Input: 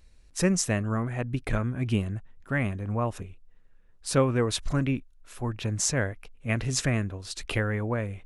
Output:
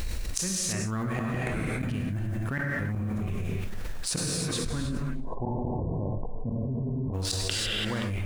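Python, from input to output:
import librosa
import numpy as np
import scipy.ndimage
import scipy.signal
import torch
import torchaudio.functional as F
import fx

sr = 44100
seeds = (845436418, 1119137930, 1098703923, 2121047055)

y = fx.law_mismatch(x, sr, coded='A')
y = fx.dynamic_eq(y, sr, hz=550.0, q=0.89, threshold_db=-40.0, ratio=4.0, max_db=-6)
y = fx.tremolo_random(y, sr, seeds[0], hz=3.5, depth_pct=55)
y = fx.gate_flip(y, sr, shuts_db=-24.0, range_db=-32)
y = fx.brickwall_lowpass(y, sr, high_hz=1100.0, at=(4.85, 7.13), fade=0.02)
y = fx.echo_feedback(y, sr, ms=175, feedback_pct=51, wet_db=-23.5)
y = fx.rev_gated(y, sr, seeds[1], gate_ms=360, shape='flat', drr_db=2.0)
y = fx.env_flatten(y, sr, amount_pct=100)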